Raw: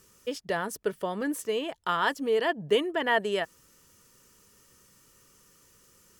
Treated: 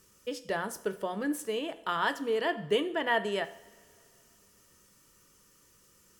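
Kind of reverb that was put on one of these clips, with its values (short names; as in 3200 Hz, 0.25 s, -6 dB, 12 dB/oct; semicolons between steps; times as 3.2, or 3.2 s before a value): two-slope reverb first 0.56 s, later 2.7 s, from -19 dB, DRR 10 dB; gain -3 dB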